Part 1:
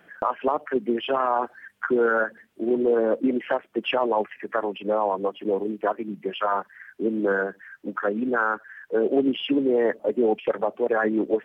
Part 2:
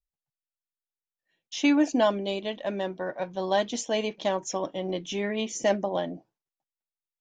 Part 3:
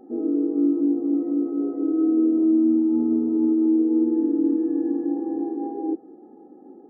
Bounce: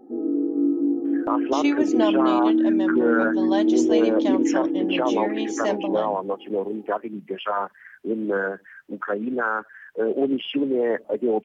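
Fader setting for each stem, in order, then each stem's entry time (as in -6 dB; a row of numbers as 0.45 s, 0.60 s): -1.0 dB, -1.5 dB, -1.0 dB; 1.05 s, 0.00 s, 0.00 s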